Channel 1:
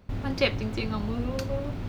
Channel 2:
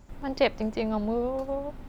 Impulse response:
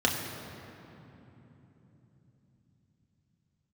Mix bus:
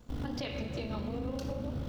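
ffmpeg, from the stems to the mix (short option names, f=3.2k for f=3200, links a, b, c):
-filter_complex "[0:a]aeval=exprs='val(0)*sin(2*PI*26*n/s)':c=same,volume=-3dB,asplit=2[a][b];[b]volume=-14.5dB[c];[1:a]volume=-9.5dB,asplit=2[d][e];[e]apad=whole_len=82975[f];[a][f]sidechaincompress=threshold=-41dB:ratio=8:attack=16:release=1250[g];[2:a]atrim=start_sample=2205[h];[c][h]afir=irnorm=-1:irlink=0[i];[g][d][i]amix=inputs=3:normalize=0,highshelf=f=4.3k:g=7,alimiter=level_in=3dB:limit=-24dB:level=0:latency=1:release=138,volume=-3dB"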